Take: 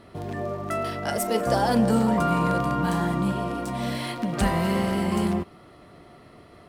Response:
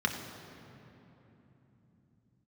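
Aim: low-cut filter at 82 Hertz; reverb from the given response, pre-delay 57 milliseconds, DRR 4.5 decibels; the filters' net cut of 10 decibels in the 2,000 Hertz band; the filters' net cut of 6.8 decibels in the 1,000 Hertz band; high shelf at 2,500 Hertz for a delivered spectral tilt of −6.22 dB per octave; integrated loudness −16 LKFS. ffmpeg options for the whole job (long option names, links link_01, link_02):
-filter_complex "[0:a]highpass=82,equalizer=frequency=1000:width_type=o:gain=-7,equalizer=frequency=2000:width_type=o:gain=-7.5,highshelf=frequency=2500:gain=-7,asplit=2[link_01][link_02];[1:a]atrim=start_sample=2205,adelay=57[link_03];[link_02][link_03]afir=irnorm=-1:irlink=0,volume=-13dB[link_04];[link_01][link_04]amix=inputs=2:normalize=0,volume=8dB"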